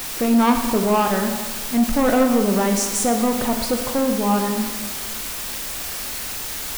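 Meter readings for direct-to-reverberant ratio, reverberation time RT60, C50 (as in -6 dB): 4.0 dB, 1.5 s, 5.5 dB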